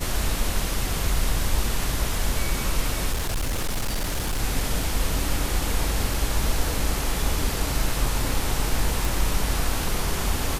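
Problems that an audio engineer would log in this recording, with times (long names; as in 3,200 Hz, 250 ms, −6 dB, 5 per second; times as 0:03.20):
0:03.12–0:04.41: clipping −21.5 dBFS
0:06.14: drop-out 2.9 ms
0:09.05: click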